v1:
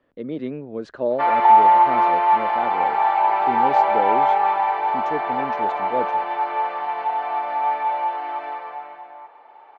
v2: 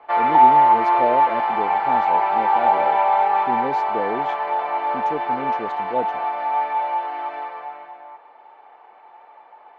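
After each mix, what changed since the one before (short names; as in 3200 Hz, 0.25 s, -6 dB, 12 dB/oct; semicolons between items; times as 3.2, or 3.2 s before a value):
background: entry -1.10 s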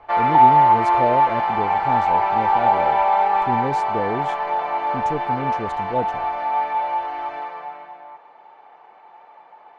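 master: remove three-band isolator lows -21 dB, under 200 Hz, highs -21 dB, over 5000 Hz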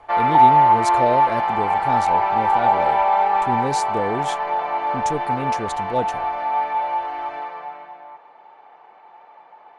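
speech: remove LPF 1100 Hz 6 dB/oct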